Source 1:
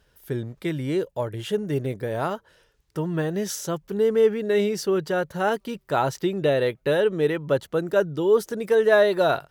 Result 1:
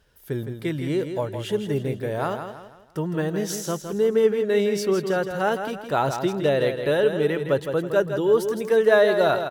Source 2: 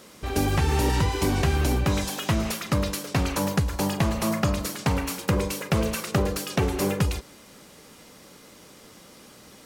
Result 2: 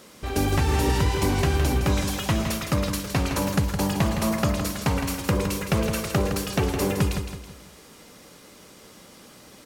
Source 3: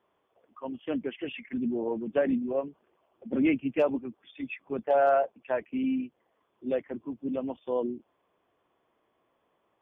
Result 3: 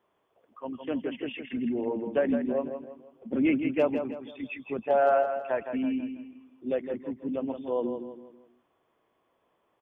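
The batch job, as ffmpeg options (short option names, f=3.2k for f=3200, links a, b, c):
-af "aecho=1:1:163|326|489|652:0.398|0.155|0.0606|0.0236"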